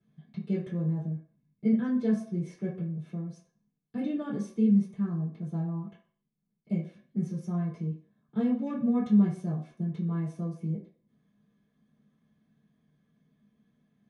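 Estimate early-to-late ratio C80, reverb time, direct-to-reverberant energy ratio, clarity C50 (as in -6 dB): 11.5 dB, 0.50 s, -10.0 dB, 7.0 dB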